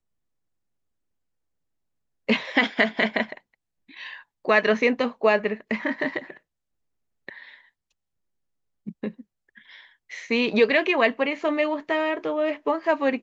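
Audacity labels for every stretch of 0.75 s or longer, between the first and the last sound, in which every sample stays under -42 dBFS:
6.370000	7.290000	silence
7.540000	8.870000	silence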